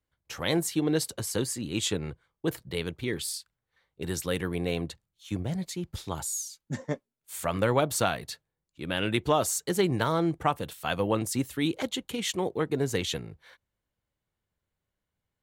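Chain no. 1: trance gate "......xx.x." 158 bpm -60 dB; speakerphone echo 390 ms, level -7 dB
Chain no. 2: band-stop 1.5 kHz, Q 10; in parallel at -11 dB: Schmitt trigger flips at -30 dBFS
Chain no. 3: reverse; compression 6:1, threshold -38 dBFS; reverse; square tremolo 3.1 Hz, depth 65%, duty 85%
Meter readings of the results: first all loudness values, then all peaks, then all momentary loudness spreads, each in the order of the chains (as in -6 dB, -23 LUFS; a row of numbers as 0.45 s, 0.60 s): -34.5 LUFS, -29.0 LUFS, -42.5 LUFS; -10.5 dBFS, -9.5 dBFS, -24.0 dBFS; 18 LU, 11 LU, 7 LU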